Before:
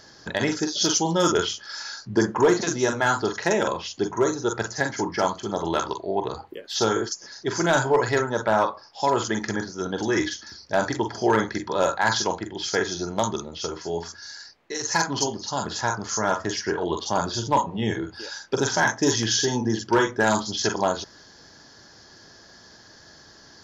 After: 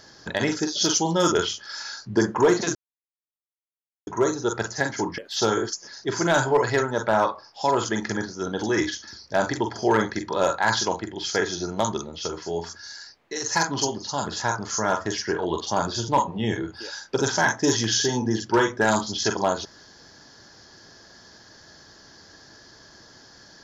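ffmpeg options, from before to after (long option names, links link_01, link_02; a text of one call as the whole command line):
ffmpeg -i in.wav -filter_complex "[0:a]asplit=4[link_01][link_02][link_03][link_04];[link_01]atrim=end=2.75,asetpts=PTS-STARTPTS,afade=type=out:start_time=2.746:duration=0.004:curve=hsin[link_05];[link_02]atrim=start=2.75:end=4.07,asetpts=PTS-STARTPTS,volume=0[link_06];[link_03]atrim=start=4.07:end=5.182,asetpts=PTS-STARTPTS,afade=type=in:duration=0.004:curve=hsin[link_07];[link_04]atrim=start=6.568[link_08];[link_05][link_06][link_07]concat=n=3:v=0:a=1[link_09];[link_09][link_08]acrossfade=duration=0.004:curve1=hsin:curve2=hsin" out.wav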